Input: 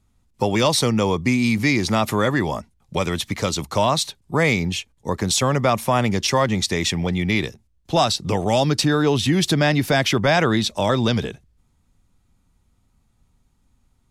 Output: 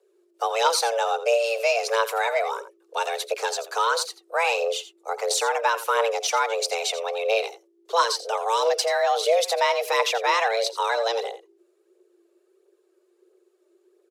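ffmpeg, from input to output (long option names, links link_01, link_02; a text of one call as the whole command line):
ffmpeg -i in.wav -af "aecho=1:1:85:0.2,aphaser=in_gain=1:out_gain=1:delay=3.8:decay=0.43:speed=1.5:type=triangular,afreqshift=340,volume=-5dB" out.wav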